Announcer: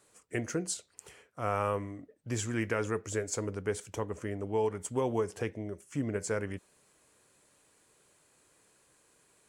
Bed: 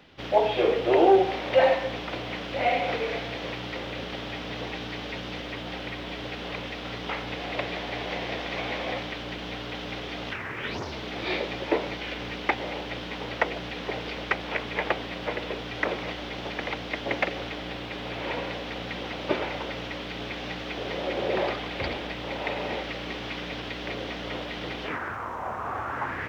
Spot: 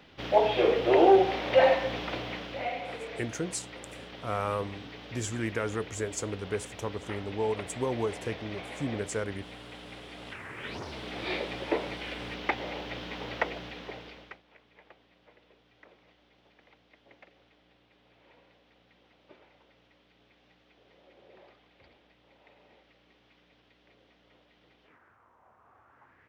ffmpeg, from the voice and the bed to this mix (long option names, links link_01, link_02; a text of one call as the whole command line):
ffmpeg -i stem1.wav -i stem2.wav -filter_complex "[0:a]adelay=2850,volume=0dB[link_01];[1:a]volume=5.5dB,afade=type=out:start_time=2.1:duration=0.62:silence=0.334965,afade=type=in:start_time=10.14:duration=1:silence=0.473151,afade=type=out:start_time=13.37:duration=1.05:silence=0.0530884[link_02];[link_01][link_02]amix=inputs=2:normalize=0" out.wav